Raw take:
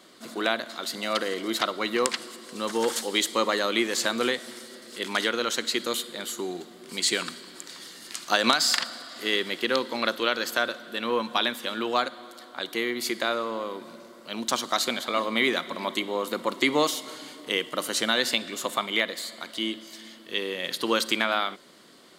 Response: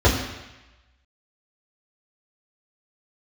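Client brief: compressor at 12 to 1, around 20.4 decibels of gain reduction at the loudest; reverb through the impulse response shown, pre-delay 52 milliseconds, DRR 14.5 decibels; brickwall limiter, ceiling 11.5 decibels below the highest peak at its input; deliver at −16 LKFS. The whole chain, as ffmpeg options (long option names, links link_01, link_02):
-filter_complex "[0:a]acompressor=threshold=-39dB:ratio=12,alimiter=level_in=7dB:limit=-24dB:level=0:latency=1,volume=-7dB,asplit=2[link_01][link_02];[1:a]atrim=start_sample=2205,adelay=52[link_03];[link_02][link_03]afir=irnorm=-1:irlink=0,volume=-35.5dB[link_04];[link_01][link_04]amix=inputs=2:normalize=0,volume=27.5dB"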